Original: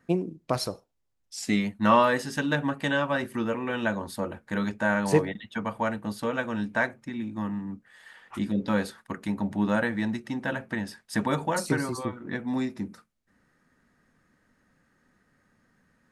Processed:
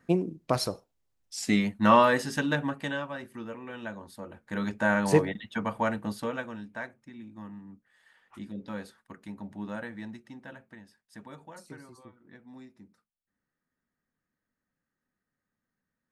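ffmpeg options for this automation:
-af "volume=11.5dB,afade=t=out:st=2.29:d=0.84:silence=0.266073,afade=t=in:st=4.26:d=0.59:silence=0.281838,afade=t=out:st=6.01:d=0.6:silence=0.251189,afade=t=out:st=10.04:d=0.82:silence=0.398107"

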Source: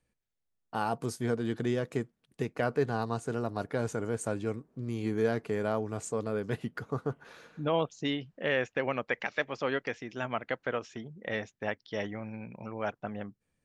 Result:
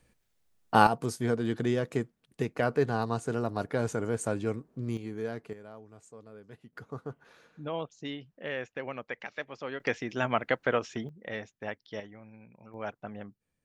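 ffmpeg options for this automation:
-af "asetnsamples=n=441:p=0,asendcmd='0.87 volume volume 2dB;4.97 volume volume -7dB;5.53 volume volume -17dB;6.73 volume volume -6.5dB;9.8 volume volume 5.5dB;11.09 volume volume -3.5dB;12 volume volume -11dB;12.74 volume volume -3.5dB',volume=12dB"

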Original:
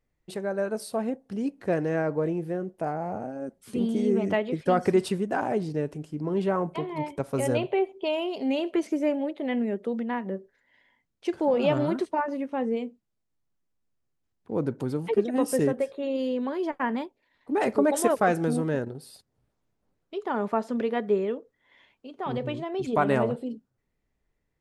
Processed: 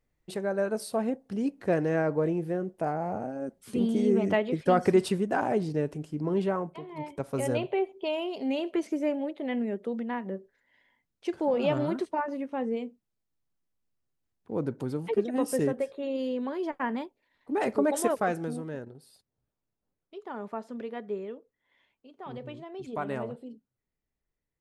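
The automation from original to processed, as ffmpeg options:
-af "volume=8dB,afade=t=out:st=6.33:d=0.47:silence=0.281838,afade=t=in:st=6.8:d=0.45:silence=0.398107,afade=t=out:st=18:d=0.62:silence=0.446684"

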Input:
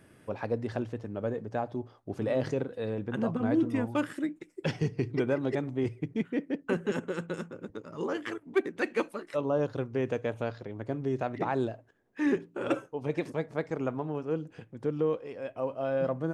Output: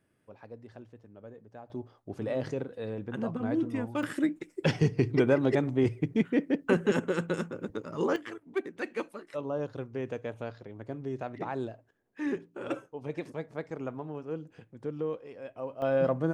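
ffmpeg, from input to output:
-af "asetnsamples=n=441:p=0,asendcmd='1.7 volume volume -3dB;4.03 volume volume 4.5dB;8.16 volume volume -5dB;15.82 volume volume 3dB',volume=-15.5dB"

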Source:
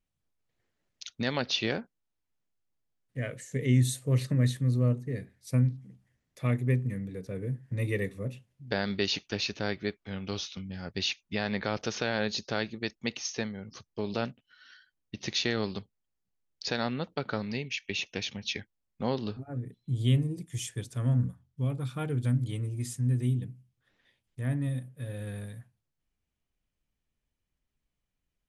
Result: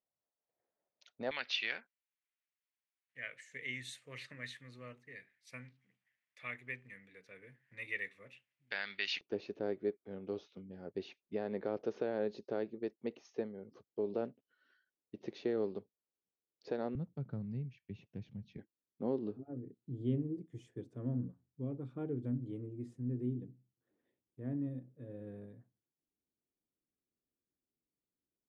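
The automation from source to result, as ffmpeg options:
-af "asetnsamples=n=441:p=0,asendcmd='1.31 bandpass f 2200;9.21 bandpass f 410;16.95 bandpass f 130;18.58 bandpass f 340',bandpass=f=640:t=q:w=2:csg=0"

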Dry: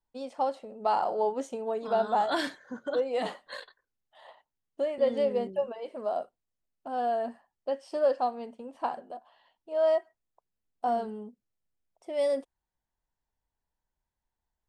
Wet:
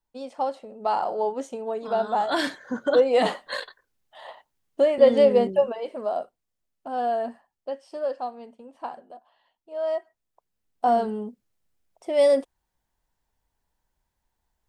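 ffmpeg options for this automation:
-af "volume=22dB,afade=t=in:st=2.26:d=0.49:silence=0.398107,afade=t=out:st=5.45:d=0.65:silence=0.473151,afade=t=out:st=7.22:d=0.66:silence=0.473151,afade=t=in:st=9.86:d=1.3:silence=0.251189"

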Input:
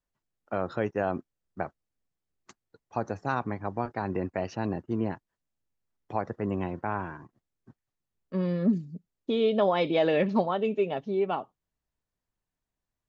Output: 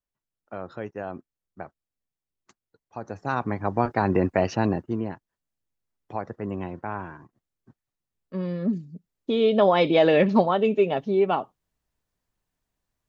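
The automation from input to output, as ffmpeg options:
-af "volume=16dB,afade=t=in:st=3:d=0.28:silence=0.446684,afade=t=in:st=3.28:d=0.65:silence=0.421697,afade=t=out:st=4.53:d=0.51:silence=0.316228,afade=t=in:st=8.91:d=0.83:silence=0.446684"

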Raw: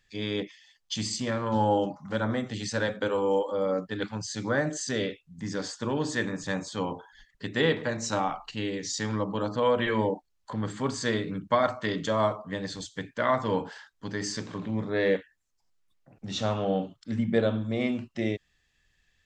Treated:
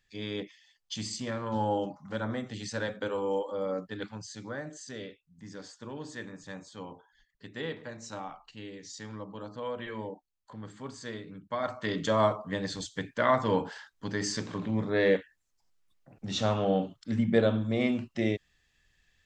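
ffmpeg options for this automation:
-af "volume=7.5dB,afade=t=out:st=3.87:d=0.71:silence=0.446684,afade=t=in:st=11.5:d=0.61:silence=0.237137"

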